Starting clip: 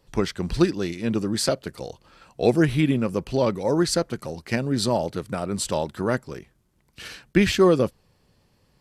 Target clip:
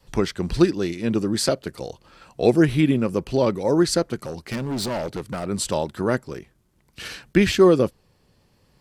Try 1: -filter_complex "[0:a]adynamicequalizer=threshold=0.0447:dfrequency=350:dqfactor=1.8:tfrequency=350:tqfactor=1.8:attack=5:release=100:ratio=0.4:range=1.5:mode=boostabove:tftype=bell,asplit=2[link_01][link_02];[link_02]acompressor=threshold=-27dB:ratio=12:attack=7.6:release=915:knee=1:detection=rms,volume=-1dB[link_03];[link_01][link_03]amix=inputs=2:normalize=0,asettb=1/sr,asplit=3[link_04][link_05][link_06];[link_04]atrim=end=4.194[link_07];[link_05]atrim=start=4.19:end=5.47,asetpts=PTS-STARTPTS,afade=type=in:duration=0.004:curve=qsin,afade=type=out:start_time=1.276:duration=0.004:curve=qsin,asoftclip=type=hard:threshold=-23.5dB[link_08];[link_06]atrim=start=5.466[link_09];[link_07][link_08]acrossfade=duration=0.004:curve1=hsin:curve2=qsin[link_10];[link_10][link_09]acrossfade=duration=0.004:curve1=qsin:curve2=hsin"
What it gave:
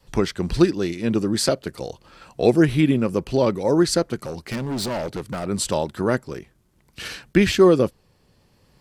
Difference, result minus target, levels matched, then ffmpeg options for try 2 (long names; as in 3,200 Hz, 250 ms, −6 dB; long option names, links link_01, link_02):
downward compressor: peak gain reduction −7 dB
-filter_complex "[0:a]adynamicequalizer=threshold=0.0447:dfrequency=350:dqfactor=1.8:tfrequency=350:tqfactor=1.8:attack=5:release=100:ratio=0.4:range=1.5:mode=boostabove:tftype=bell,asplit=2[link_01][link_02];[link_02]acompressor=threshold=-34.5dB:ratio=12:attack=7.6:release=915:knee=1:detection=rms,volume=-1dB[link_03];[link_01][link_03]amix=inputs=2:normalize=0,asettb=1/sr,asplit=3[link_04][link_05][link_06];[link_04]atrim=end=4.194[link_07];[link_05]atrim=start=4.19:end=5.47,asetpts=PTS-STARTPTS,afade=type=in:duration=0.004:curve=qsin,afade=type=out:start_time=1.276:duration=0.004:curve=qsin,asoftclip=type=hard:threshold=-23.5dB[link_08];[link_06]atrim=start=5.466[link_09];[link_07][link_08]acrossfade=duration=0.004:curve1=hsin:curve2=qsin[link_10];[link_10][link_09]acrossfade=duration=0.004:curve1=qsin:curve2=hsin"